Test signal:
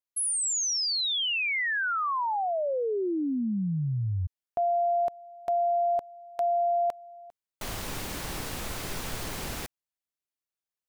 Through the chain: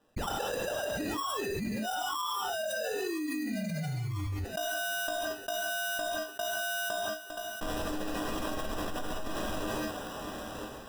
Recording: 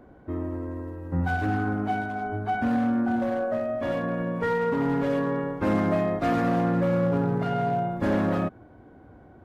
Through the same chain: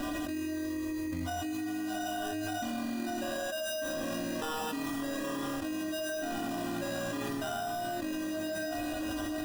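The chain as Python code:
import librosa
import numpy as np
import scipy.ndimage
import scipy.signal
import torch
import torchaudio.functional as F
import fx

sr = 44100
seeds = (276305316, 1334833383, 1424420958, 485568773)

p1 = fx.dereverb_blind(x, sr, rt60_s=1.5)
p2 = fx.stiff_resonator(p1, sr, f0_hz=300.0, decay_s=0.25, stiffness=0.03)
p3 = p2 + fx.echo_thinned(p2, sr, ms=980, feedback_pct=43, hz=700.0, wet_db=-24.0, dry=0)
p4 = fx.sample_hold(p3, sr, seeds[0], rate_hz=2200.0, jitter_pct=0)
p5 = fx.rev_gated(p4, sr, seeds[1], gate_ms=210, shape='flat', drr_db=-0.5)
p6 = fx.env_flatten(p5, sr, amount_pct=100)
y = F.gain(torch.from_numpy(p6), -4.0).numpy()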